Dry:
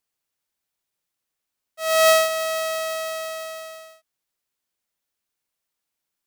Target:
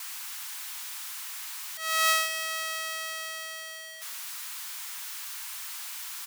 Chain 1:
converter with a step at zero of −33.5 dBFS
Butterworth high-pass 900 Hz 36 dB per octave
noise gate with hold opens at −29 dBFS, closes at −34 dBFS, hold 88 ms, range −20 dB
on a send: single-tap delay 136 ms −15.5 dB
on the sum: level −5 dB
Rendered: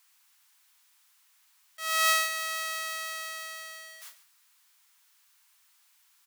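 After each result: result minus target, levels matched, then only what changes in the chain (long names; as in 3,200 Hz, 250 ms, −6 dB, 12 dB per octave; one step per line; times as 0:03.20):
echo 84 ms early; converter with a step at zero: distortion −6 dB
change: single-tap delay 220 ms −15.5 dB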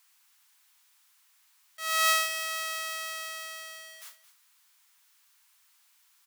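converter with a step at zero: distortion −6 dB
change: converter with a step at zero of −27 dBFS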